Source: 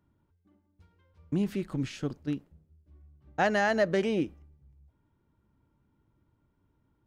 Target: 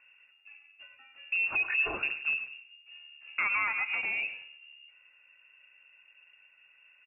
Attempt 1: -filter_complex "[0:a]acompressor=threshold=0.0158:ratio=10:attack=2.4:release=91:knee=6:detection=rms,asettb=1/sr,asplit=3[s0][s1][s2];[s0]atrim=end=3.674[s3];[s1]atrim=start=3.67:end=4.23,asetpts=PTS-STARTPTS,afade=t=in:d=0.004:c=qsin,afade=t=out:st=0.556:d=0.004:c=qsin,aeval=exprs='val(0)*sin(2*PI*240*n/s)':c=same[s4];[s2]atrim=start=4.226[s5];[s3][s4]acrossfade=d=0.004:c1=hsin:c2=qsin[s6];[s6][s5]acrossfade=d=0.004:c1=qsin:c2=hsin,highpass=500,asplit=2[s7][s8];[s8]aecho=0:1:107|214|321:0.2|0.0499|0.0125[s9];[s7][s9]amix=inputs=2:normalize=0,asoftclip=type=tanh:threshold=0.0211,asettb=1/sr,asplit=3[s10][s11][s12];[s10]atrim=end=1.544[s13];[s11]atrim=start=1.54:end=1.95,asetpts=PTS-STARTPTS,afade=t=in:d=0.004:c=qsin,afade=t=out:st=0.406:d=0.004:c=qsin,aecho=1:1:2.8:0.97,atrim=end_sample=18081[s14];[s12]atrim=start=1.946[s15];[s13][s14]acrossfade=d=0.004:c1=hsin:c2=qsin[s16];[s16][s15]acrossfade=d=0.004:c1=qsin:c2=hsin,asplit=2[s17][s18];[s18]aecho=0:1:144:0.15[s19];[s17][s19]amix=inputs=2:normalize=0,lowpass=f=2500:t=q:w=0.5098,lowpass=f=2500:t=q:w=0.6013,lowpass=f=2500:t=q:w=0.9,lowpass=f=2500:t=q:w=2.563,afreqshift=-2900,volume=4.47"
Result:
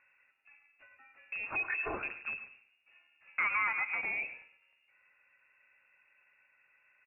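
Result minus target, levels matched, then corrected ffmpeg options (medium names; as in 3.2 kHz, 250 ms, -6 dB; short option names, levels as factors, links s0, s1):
500 Hz band +4.5 dB
-filter_complex "[0:a]acompressor=threshold=0.0158:ratio=10:attack=2.4:release=91:knee=6:detection=rms,asettb=1/sr,asplit=3[s0][s1][s2];[s0]atrim=end=3.674[s3];[s1]atrim=start=3.67:end=4.23,asetpts=PTS-STARTPTS,afade=t=in:d=0.004:c=qsin,afade=t=out:st=0.556:d=0.004:c=qsin,aeval=exprs='val(0)*sin(2*PI*240*n/s)':c=same[s4];[s2]atrim=start=4.226[s5];[s3][s4]acrossfade=d=0.004:c1=hsin:c2=qsin[s6];[s6][s5]acrossfade=d=0.004:c1=qsin:c2=hsin,highpass=130,asplit=2[s7][s8];[s8]aecho=0:1:107|214|321:0.2|0.0499|0.0125[s9];[s7][s9]amix=inputs=2:normalize=0,asoftclip=type=tanh:threshold=0.0211,asettb=1/sr,asplit=3[s10][s11][s12];[s10]atrim=end=1.544[s13];[s11]atrim=start=1.54:end=1.95,asetpts=PTS-STARTPTS,afade=t=in:d=0.004:c=qsin,afade=t=out:st=0.406:d=0.004:c=qsin,aecho=1:1:2.8:0.97,atrim=end_sample=18081[s14];[s12]atrim=start=1.946[s15];[s13][s14]acrossfade=d=0.004:c1=hsin:c2=qsin[s16];[s16][s15]acrossfade=d=0.004:c1=qsin:c2=hsin,asplit=2[s17][s18];[s18]aecho=0:1:144:0.15[s19];[s17][s19]amix=inputs=2:normalize=0,lowpass=f=2500:t=q:w=0.5098,lowpass=f=2500:t=q:w=0.6013,lowpass=f=2500:t=q:w=0.9,lowpass=f=2500:t=q:w=2.563,afreqshift=-2900,volume=4.47"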